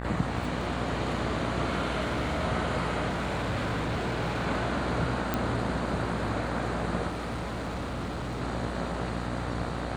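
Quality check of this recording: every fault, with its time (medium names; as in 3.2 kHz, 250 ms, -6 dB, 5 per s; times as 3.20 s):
buzz 60 Hz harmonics 33 -35 dBFS
2.00–2.44 s: clipped -25 dBFS
3.08–4.47 s: clipped -26 dBFS
5.34 s: pop -13 dBFS
7.08–8.42 s: clipped -30 dBFS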